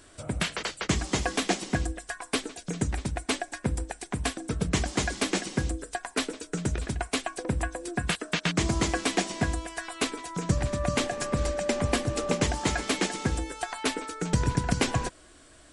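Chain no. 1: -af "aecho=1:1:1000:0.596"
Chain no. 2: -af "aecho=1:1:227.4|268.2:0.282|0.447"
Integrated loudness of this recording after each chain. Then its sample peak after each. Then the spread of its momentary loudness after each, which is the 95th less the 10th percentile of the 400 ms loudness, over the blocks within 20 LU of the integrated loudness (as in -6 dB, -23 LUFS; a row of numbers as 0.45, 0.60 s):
-28.5, -29.0 LUFS; -10.5, -10.5 dBFS; 5, 6 LU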